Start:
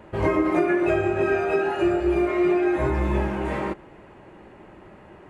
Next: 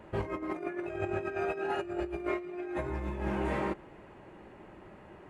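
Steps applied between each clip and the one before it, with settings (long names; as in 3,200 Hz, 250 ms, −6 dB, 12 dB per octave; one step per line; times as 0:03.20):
compressor whose output falls as the input rises −25 dBFS, ratio −0.5
level −8.5 dB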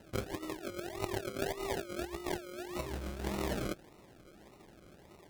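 sample-and-hold swept by an LFO 38×, swing 60% 1.7 Hz
harmonic generator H 3 −16 dB, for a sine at −19.5 dBFS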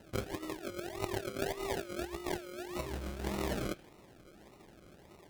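on a send at −12 dB: resonant band-pass 2,700 Hz, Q 1.5 + convolution reverb, pre-delay 3 ms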